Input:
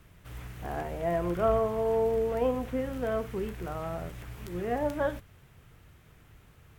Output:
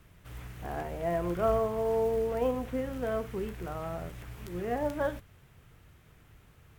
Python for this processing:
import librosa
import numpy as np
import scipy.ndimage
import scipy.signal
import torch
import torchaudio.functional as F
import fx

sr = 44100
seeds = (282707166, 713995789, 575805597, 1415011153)

y = fx.quant_float(x, sr, bits=4)
y = y * librosa.db_to_amplitude(-1.5)